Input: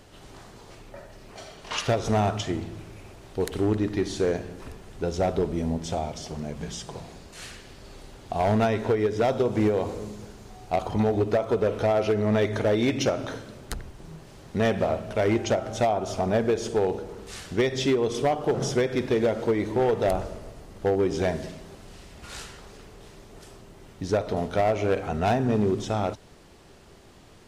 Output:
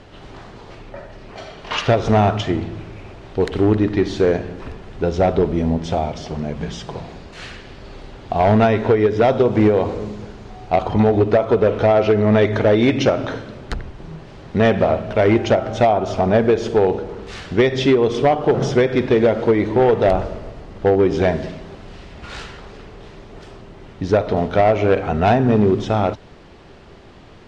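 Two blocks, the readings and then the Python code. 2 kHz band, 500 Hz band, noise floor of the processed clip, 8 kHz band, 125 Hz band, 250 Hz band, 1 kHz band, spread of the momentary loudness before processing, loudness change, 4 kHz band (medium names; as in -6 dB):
+8.0 dB, +8.5 dB, -42 dBFS, no reading, +8.5 dB, +8.5 dB, +8.5 dB, 19 LU, +8.5 dB, +5.5 dB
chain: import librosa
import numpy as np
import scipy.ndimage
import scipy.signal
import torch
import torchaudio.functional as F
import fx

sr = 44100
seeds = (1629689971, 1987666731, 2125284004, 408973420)

y = scipy.signal.sosfilt(scipy.signal.butter(2, 3700.0, 'lowpass', fs=sr, output='sos'), x)
y = y * librosa.db_to_amplitude(8.5)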